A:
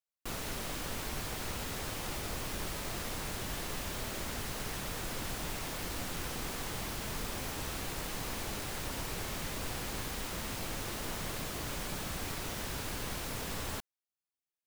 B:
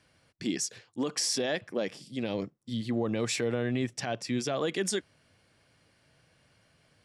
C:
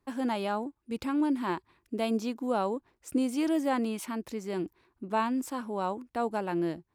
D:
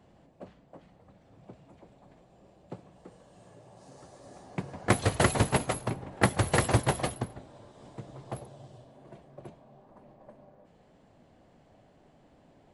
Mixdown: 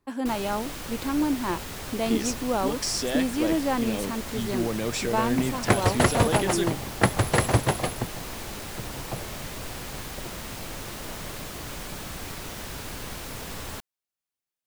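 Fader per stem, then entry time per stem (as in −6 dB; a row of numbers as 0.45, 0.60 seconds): +2.0, +1.0, +2.5, +3.0 decibels; 0.00, 1.65, 0.00, 0.80 seconds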